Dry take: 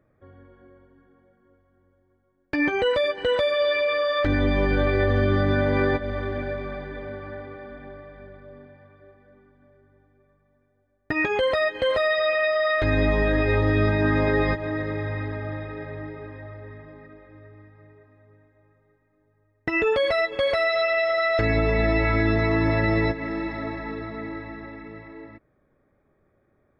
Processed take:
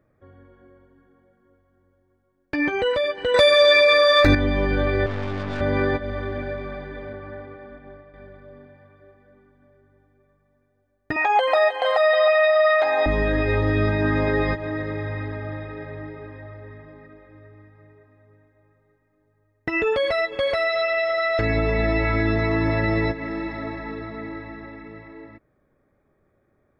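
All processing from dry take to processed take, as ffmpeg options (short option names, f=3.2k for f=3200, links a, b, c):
-filter_complex "[0:a]asettb=1/sr,asplit=3[a][b][c];[a]atrim=end=3.344[d];[b]atrim=start=3.34:end=4.35,asetpts=PTS-STARTPTS,afade=t=in:d=0.004:c=qsin,afade=t=out:st=1.006:d=0.004:c=qsin,acontrast=81,asuperstop=centerf=3100:order=12:qfactor=5.5,aemphasis=mode=production:type=75kf[e];[c]atrim=start=4.346[f];[d][e]acrossfade=d=0.004:c1=hsin:c2=qsin[g];[g][f]acrossfade=d=0.004:c1=qsin:c2=hsin,asettb=1/sr,asplit=3[h][i][j];[h]atrim=end=5.064[k];[i]atrim=start=5.06:end=5.61,asetpts=PTS-STARTPTS,afade=t=in:d=0.004:c=qsin,afade=t=out:st=0.546:d=0.004:c=qsin,highpass=f=69:w=0.5412,highpass=f=69:w=1.3066,aeval=exprs='(tanh(17.8*val(0)+0.65)-tanh(0.65))/17.8':c=same[l];[j]atrim=start=5.606[m];[k][l]acrossfade=d=0.004:c1=hsin:c2=qsin[n];[n][m]acrossfade=d=0.004:c1=qsin:c2=hsin,asettb=1/sr,asplit=3[o][p][q];[o]atrim=end=7.134[r];[p]atrim=start=7.13:end=8.14,asetpts=PTS-STARTPTS,afade=t=in:d=0.004:c=qsin,afade=t=out:st=1.006:d=0.004:c=qsin,lowpass=f=3.2k:p=1,agate=range=-33dB:threshold=-39dB:ratio=3:release=100:detection=peak[s];[q]atrim=start=8.136[t];[r][s]acrossfade=d=0.004:c1=hsin:c2=qsin[u];[u][t]acrossfade=d=0.004:c1=qsin:c2=hsin,asettb=1/sr,asplit=3[v][w][x];[v]atrim=end=11.164[y];[w]atrim=start=11.16:end=13.06,asetpts=PTS-STARTPTS,afade=t=in:d=0.004:c=qsin,afade=t=out:st=1.896:d=0.004:c=qsin,highpass=f=760:t=q:w=9.2,aecho=1:1:313:0.299,atrim=end_sample=83790[z];[x]atrim=start=13.056[aa];[y][z]acrossfade=d=0.004:c1=hsin:c2=qsin[ab];[ab][aa]acrossfade=d=0.004:c1=qsin:c2=hsin"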